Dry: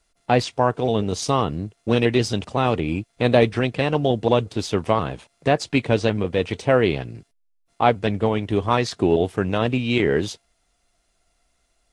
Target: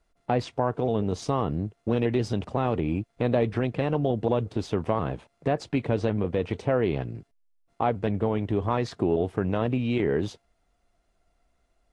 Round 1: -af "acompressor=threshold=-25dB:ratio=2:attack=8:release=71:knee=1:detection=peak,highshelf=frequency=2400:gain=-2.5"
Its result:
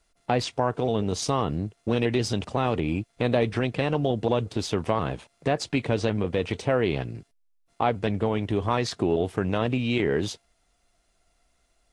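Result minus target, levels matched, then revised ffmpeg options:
4,000 Hz band +7.5 dB
-af "acompressor=threshold=-25dB:ratio=2:attack=8:release=71:knee=1:detection=peak,highshelf=frequency=2400:gain=-14.5"

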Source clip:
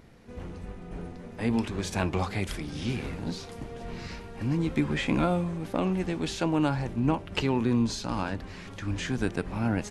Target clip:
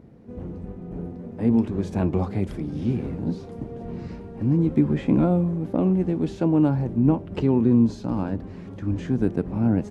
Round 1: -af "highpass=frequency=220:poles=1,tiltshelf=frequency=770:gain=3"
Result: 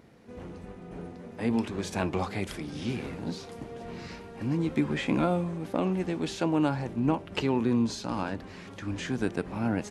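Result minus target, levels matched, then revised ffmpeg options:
1,000 Hz band +8.0 dB
-af "highpass=frequency=220:poles=1,tiltshelf=frequency=770:gain=13.5"

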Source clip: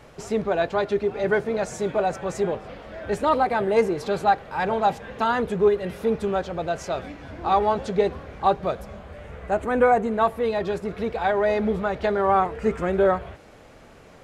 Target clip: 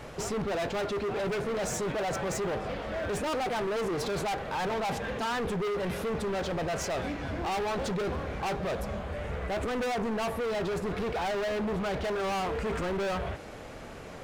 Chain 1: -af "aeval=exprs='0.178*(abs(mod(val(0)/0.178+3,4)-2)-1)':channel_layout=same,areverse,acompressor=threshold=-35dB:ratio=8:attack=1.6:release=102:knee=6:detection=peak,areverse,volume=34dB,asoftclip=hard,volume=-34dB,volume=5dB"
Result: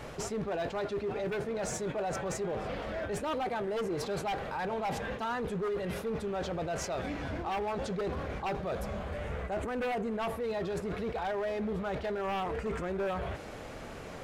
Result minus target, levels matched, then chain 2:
downward compressor: peak gain reduction +9.5 dB
-af "aeval=exprs='0.178*(abs(mod(val(0)/0.178+3,4)-2)-1)':channel_layout=same,areverse,acompressor=threshold=-24dB:ratio=8:attack=1.6:release=102:knee=6:detection=peak,areverse,volume=34dB,asoftclip=hard,volume=-34dB,volume=5dB"

